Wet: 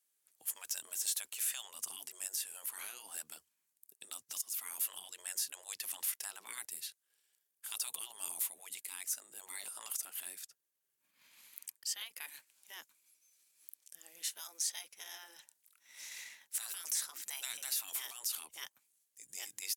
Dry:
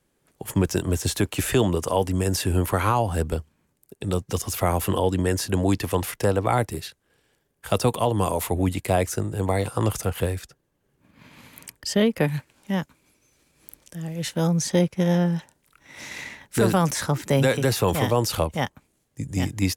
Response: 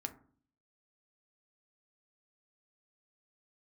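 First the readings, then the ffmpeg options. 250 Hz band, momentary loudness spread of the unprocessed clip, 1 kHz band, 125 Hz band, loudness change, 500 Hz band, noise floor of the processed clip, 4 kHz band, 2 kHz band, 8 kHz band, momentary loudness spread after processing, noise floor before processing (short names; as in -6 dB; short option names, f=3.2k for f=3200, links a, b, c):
under -40 dB, 13 LU, -29.0 dB, under -40 dB, -15.5 dB, under -40 dB, -83 dBFS, -10.5 dB, -17.0 dB, -5.0 dB, 16 LU, -71 dBFS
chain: -af "afftfilt=real='re*lt(hypot(re,im),0.178)':imag='im*lt(hypot(re,im),0.178)':win_size=1024:overlap=0.75,aderivative,alimiter=limit=-19.5dB:level=0:latency=1:release=368,volume=-4dB"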